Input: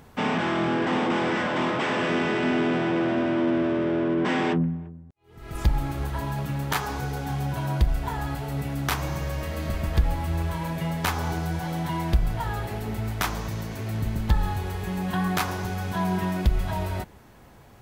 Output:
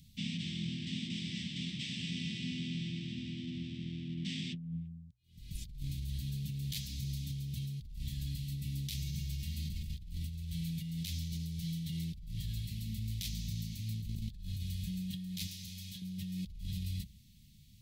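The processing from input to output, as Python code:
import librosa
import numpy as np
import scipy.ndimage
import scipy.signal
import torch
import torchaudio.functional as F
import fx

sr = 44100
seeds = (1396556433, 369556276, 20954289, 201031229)

y = scipy.signal.sosfilt(scipy.signal.ellip(3, 1.0, 50, [190.0, 3800.0], 'bandstop', fs=sr, output='sos'), x)
y = fx.peak_eq(y, sr, hz=2000.0, db=13.5, octaves=1.5)
y = fx.hum_notches(y, sr, base_hz=60, count=2)
y = fx.over_compress(y, sr, threshold_db=-31.0, ratio=-1.0)
y = fx.low_shelf(y, sr, hz=480.0, db=-11.0, at=(15.47, 16.02))
y = F.gain(torch.from_numpy(y), -7.5).numpy()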